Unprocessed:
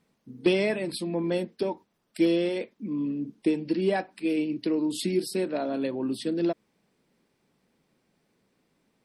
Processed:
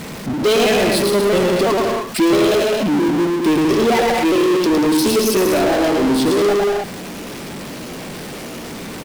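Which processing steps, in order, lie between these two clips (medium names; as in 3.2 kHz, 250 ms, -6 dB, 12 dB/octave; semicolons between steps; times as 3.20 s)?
pitch shift switched off and on +3 st, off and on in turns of 332 ms; bouncing-ball echo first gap 110 ms, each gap 0.7×, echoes 5; power-law waveshaper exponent 0.35; trim +3 dB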